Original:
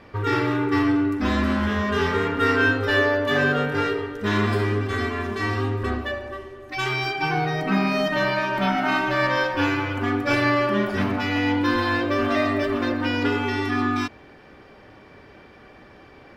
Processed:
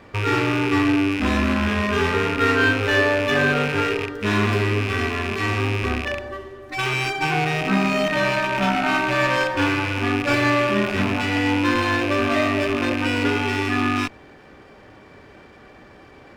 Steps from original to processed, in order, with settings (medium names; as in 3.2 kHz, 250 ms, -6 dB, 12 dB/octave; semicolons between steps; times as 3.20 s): rattle on loud lows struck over -34 dBFS, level -17 dBFS; sliding maximum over 3 samples; trim +1.5 dB